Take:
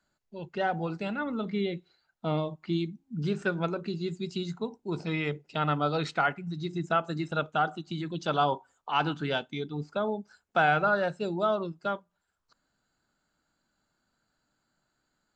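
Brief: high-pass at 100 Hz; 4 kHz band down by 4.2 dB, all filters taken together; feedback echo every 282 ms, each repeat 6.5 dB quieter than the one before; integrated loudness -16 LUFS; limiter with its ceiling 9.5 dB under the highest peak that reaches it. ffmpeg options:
-af "highpass=100,equalizer=f=4000:t=o:g=-5.5,alimiter=limit=0.0841:level=0:latency=1,aecho=1:1:282|564|846|1128|1410|1692:0.473|0.222|0.105|0.0491|0.0231|0.0109,volume=7.08"

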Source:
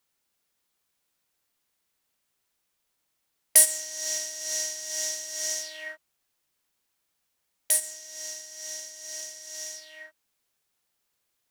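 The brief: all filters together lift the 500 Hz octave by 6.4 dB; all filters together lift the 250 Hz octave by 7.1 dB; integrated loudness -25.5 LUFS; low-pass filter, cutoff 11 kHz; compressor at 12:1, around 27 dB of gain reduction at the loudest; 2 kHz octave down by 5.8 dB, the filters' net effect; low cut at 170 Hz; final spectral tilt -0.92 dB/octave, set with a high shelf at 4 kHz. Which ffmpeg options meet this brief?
-af "highpass=170,lowpass=11000,equalizer=f=250:t=o:g=6.5,equalizer=f=500:t=o:g=8.5,equalizer=f=2000:t=o:g=-8,highshelf=f=4000:g=6.5,acompressor=threshold=0.0158:ratio=12,volume=4.22"

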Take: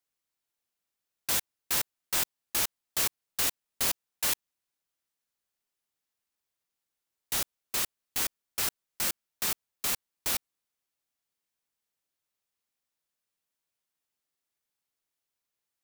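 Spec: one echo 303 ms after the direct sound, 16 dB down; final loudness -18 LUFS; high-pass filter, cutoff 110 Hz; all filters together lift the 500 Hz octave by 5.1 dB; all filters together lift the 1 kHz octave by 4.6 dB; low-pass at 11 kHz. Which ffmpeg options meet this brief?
-af "highpass=110,lowpass=11000,equalizer=f=500:t=o:g=5,equalizer=f=1000:t=o:g=4.5,aecho=1:1:303:0.158,volume=5.31"

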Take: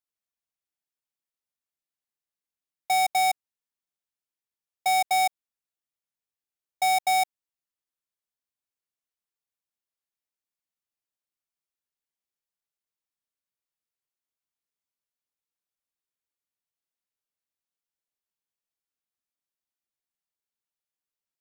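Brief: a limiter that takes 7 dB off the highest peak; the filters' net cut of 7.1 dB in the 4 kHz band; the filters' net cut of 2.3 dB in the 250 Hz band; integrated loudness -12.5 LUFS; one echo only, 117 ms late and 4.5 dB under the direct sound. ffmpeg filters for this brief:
-af "equalizer=f=250:t=o:g=-5,equalizer=f=4000:t=o:g=-8.5,alimiter=level_in=1.41:limit=0.0631:level=0:latency=1,volume=0.708,aecho=1:1:117:0.596,volume=8.91"

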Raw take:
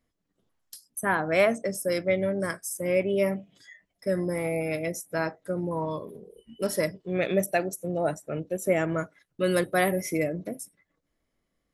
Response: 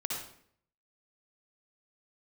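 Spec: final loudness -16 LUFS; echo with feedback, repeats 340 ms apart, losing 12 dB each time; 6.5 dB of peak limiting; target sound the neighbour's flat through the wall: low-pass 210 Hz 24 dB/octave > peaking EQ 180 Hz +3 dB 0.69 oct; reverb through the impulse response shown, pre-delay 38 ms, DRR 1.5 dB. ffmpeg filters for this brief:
-filter_complex "[0:a]alimiter=limit=0.141:level=0:latency=1,aecho=1:1:340|680|1020:0.251|0.0628|0.0157,asplit=2[s0][s1];[1:a]atrim=start_sample=2205,adelay=38[s2];[s1][s2]afir=irnorm=-1:irlink=0,volume=0.562[s3];[s0][s3]amix=inputs=2:normalize=0,lowpass=f=210:w=0.5412,lowpass=f=210:w=1.3066,equalizer=f=180:t=o:w=0.69:g=3,volume=6.68"

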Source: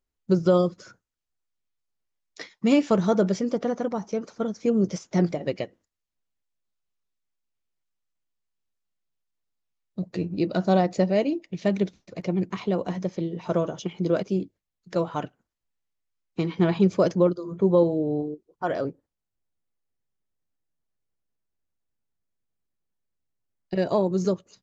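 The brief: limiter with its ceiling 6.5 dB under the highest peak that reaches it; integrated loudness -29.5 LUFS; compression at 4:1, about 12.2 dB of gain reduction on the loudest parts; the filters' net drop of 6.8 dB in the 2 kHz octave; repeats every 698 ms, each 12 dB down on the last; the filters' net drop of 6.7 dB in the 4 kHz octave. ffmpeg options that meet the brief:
-af "equalizer=f=2000:t=o:g=-8,equalizer=f=4000:t=o:g=-6,acompressor=threshold=0.0316:ratio=4,alimiter=level_in=1.12:limit=0.0631:level=0:latency=1,volume=0.891,aecho=1:1:698|1396|2094:0.251|0.0628|0.0157,volume=2.11"

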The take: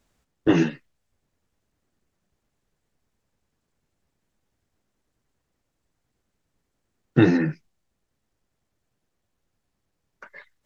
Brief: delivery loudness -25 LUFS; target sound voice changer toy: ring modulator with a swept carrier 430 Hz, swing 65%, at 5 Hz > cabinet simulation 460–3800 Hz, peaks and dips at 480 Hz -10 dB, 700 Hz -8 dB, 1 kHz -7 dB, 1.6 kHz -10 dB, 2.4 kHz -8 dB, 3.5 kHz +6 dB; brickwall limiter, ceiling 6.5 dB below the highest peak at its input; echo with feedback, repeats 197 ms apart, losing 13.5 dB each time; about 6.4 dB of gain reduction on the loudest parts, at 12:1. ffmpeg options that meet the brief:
-af "acompressor=threshold=0.141:ratio=12,alimiter=limit=0.168:level=0:latency=1,aecho=1:1:197|394:0.211|0.0444,aeval=exprs='val(0)*sin(2*PI*430*n/s+430*0.65/5*sin(2*PI*5*n/s))':c=same,highpass=460,equalizer=f=480:t=q:w=4:g=-10,equalizer=f=700:t=q:w=4:g=-8,equalizer=f=1000:t=q:w=4:g=-7,equalizer=f=1600:t=q:w=4:g=-10,equalizer=f=2400:t=q:w=4:g=-8,equalizer=f=3500:t=q:w=4:g=6,lowpass=f=3800:w=0.5412,lowpass=f=3800:w=1.3066,volume=6.31"

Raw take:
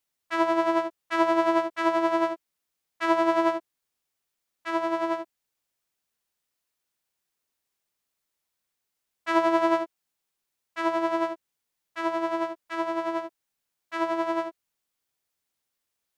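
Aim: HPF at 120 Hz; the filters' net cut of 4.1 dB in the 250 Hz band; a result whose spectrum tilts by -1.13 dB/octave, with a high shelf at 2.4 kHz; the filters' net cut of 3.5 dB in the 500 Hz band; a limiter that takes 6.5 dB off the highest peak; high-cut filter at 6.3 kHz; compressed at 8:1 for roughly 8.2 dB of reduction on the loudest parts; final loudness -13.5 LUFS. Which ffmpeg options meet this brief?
-af "highpass=120,lowpass=6300,equalizer=f=250:t=o:g=-3.5,equalizer=f=500:t=o:g=-4.5,highshelf=f=2400:g=-4.5,acompressor=threshold=0.0398:ratio=8,volume=15.8,alimiter=limit=0.944:level=0:latency=1"

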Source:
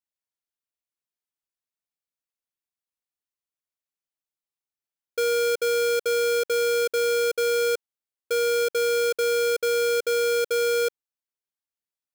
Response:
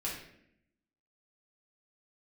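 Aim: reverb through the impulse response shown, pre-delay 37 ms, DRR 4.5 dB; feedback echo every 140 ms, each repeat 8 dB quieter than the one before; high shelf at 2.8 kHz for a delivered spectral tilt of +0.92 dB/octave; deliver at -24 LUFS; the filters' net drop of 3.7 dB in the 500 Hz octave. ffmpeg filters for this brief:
-filter_complex "[0:a]equalizer=f=500:t=o:g=-4,highshelf=f=2800:g=6.5,aecho=1:1:140|280|420|560|700:0.398|0.159|0.0637|0.0255|0.0102,asplit=2[s0][s1];[1:a]atrim=start_sample=2205,adelay=37[s2];[s1][s2]afir=irnorm=-1:irlink=0,volume=0.422[s3];[s0][s3]amix=inputs=2:normalize=0"

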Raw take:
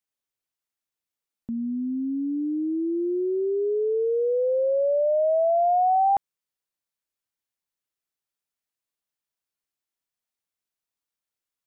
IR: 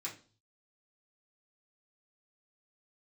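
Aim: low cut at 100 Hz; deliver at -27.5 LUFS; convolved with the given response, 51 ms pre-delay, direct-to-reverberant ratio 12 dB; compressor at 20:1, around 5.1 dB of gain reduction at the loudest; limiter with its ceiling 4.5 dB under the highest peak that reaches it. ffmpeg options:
-filter_complex "[0:a]highpass=100,acompressor=threshold=0.0631:ratio=20,alimiter=level_in=1.5:limit=0.0631:level=0:latency=1,volume=0.668,asplit=2[s0][s1];[1:a]atrim=start_sample=2205,adelay=51[s2];[s1][s2]afir=irnorm=-1:irlink=0,volume=0.266[s3];[s0][s3]amix=inputs=2:normalize=0,volume=1.58"

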